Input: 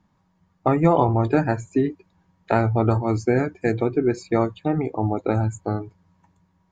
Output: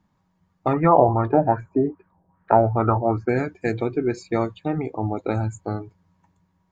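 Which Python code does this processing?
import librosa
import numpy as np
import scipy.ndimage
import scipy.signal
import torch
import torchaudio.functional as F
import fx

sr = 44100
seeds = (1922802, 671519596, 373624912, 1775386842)

y = fx.dynamic_eq(x, sr, hz=3300.0, q=0.87, threshold_db=-40.0, ratio=4.0, max_db=5)
y = fx.filter_lfo_lowpass(y, sr, shape='sine', hz=2.5, low_hz=620.0, high_hz=1600.0, q=3.8, at=(0.73, 3.29))
y = y * librosa.db_to_amplitude(-2.5)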